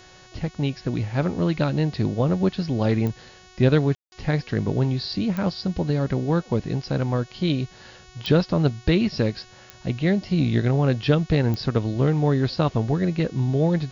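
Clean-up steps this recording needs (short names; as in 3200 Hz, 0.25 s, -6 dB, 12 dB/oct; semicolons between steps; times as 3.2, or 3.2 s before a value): de-click; de-hum 369.2 Hz, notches 19; room tone fill 3.95–4.12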